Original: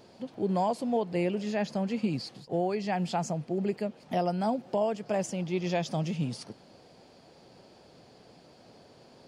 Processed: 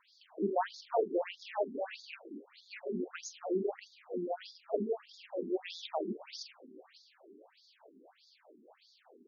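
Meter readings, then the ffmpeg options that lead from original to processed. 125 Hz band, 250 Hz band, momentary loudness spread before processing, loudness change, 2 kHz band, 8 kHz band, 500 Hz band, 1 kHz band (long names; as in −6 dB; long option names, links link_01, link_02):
−19.5 dB, −10.0 dB, 6 LU, −7.0 dB, −6.0 dB, −7.5 dB, −5.0 dB, −7.5 dB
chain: -filter_complex "[0:a]asplit=7[link_01][link_02][link_03][link_04][link_05][link_06][link_07];[link_02]adelay=275,afreqshift=-140,volume=-9dB[link_08];[link_03]adelay=550,afreqshift=-280,volume=-14.7dB[link_09];[link_04]adelay=825,afreqshift=-420,volume=-20.4dB[link_10];[link_05]adelay=1100,afreqshift=-560,volume=-26dB[link_11];[link_06]adelay=1375,afreqshift=-700,volume=-31.7dB[link_12];[link_07]adelay=1650,afreqshift=-840,volume=-37.4dB[link_13];[link_01][link_08][link_09][link_10][link_11][link_12][link_13]amix=inputs=7:normalize=0,aeval=exprs='(tanh(10*val(0)+0.75)-tanh(0.75))/10':channel_layout=same,asplit=2[link_14][link_15];[link_15]adelay=44,volume=-7dB[link_16];[link_14][link_16]amix=inputs=2:normalize=0,afftfilt=real='re*between(b*sr/1024,280*pow(4900/280,0.5+0.5*sin(2*PI*1.6*pts/sr))/1.41,280*pow(4900/280,0.5+0.5*sin(2*PI*1.6*pts/sr))*1.41)':imag='im*between(b*sr/1024,280*pow(4900/280,0.5+0.5*sin(2*PI*1.6*pts/sr))/1.41,280*pow(4900/280,0.5+0.5*sin(2*PI*1.6*pts/sr))*1.41)':win_size=1024:overlap=0.75,volume=4dB"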